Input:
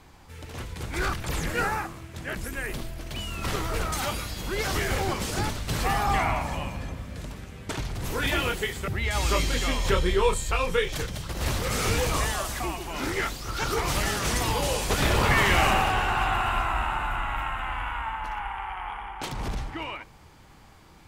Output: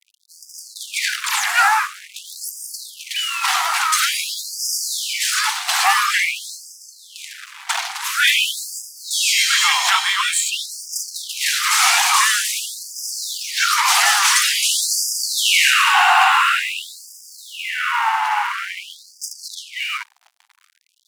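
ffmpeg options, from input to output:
ffmpeg -i in.wav -filter_complex "[0:a]acrossover=split=240|3200[link_01][link_02][link_03];[link_02]asoftclip=type=tanh:threshold=-22.5dB[link_04];[link_01][link_04][link_03]amix=inputs=3:normalize=0,apsyclip=16.5dB,lowpass=12000,aeval=exprs='sgn(val(0))*max(abs(val(0))-0.0355,0)':channel_layout=same,bass=frequency=250:gain=-6,treble=frequency=4000:gain=0,afftfilt=real='re*gte(b*sr/1024,670*pow(4800/670,0.5+0.5*sin(2*PI*0.48*pts/sr)))':imag='im*gte(b*sr/1024,670*pow(4800/670,0.5+0.5*sin(2*PI*0.48*pts/sr)))':win_size=1024:overlap=0.75" out.wav

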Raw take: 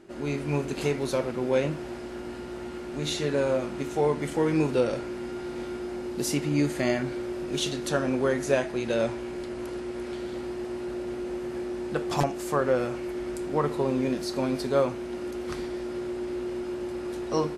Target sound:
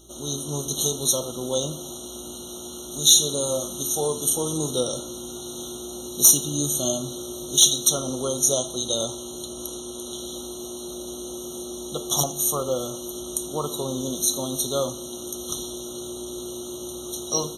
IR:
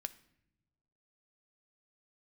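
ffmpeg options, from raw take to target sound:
-filter_complex "[0:a]aexciter=amount=10.6:drive=7.5:freq=3500,asplit=2[link_01][link_02];[link_02]aeval=exprs='(mod(1.06*val(0)+1,2)-1)/1.06':channel_layout=same,volume=-12dB[link_03];[link_01][link_03]amix=inputs=2:normalize=0,highpass=50[link_04];[1:a]atrim=start_sample=2205[link_05];[link_04][link_05]afir=irnorm=-1:irlink=0,aeval=exprs='val(0)+0.00251*(sin(2*PI*60*n/s)+sin(2*PI*2*60*n/s)/2+sin(2*PI*3*60*n/s)/3+sin(2*PI*4*60*n/s)/4+sin(2*PI*5*60*n/s)/5)':channel_layout=same,asettb=1/sr,asplit=3[link_06][link_07][link_08];[link_06]atrim=end=2.914[link_09];[link_07]atrim=start=2.91:end=4.58,asetpts=PTS-STARTPTS,afade=type=in:duration=0.004:curve=qsin,afade=type=out:start_time=1.666:duration=0.004:curve=qsin,highshelf=frequency=10000:gain=9[link_10];[link_08]atrim=start=4.576[link_11];[link_09][link_10]acrossfade=duration=0.004:curve1=hsin:curve2=qsin[link_12];[link_12][link_11]acrossfade=duration=0.004:curve1=qsin:curve2=hsin,afftfilt=real='re*eq(mod(floor(b*sr/1024/1400),2),0)':imag='im*eq(mod(floor(b*sr/1024/1400),2),0)':win_size=1024:overlap=0.75,volume=-1.5dB"

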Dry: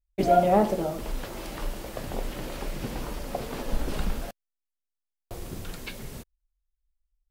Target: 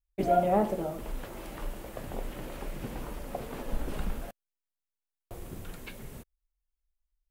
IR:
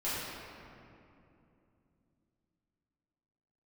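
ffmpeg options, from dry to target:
-af "equalizer=frequency=4900:width_type=o:width=1.1:gain=-7,volume=-4.5dB"

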